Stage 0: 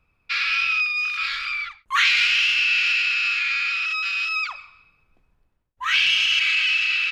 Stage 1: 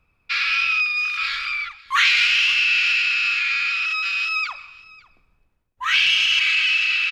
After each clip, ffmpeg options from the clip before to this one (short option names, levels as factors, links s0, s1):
-af "aecho=1:1:552:0.0708,volume=1.19"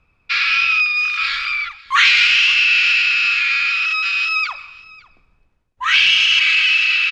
-af "lowpass=7500,volume=1.68"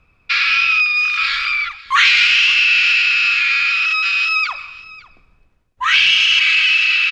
-filter_complex "[0:a]bandreject=f=880:w=16,asplit=2[s0][s1];[s1]acompressor=threshold=0.0794:ratio=6,volume=0.944[s2];[s0][s2]amix=inputs=2:normalize=0,volume=0.841"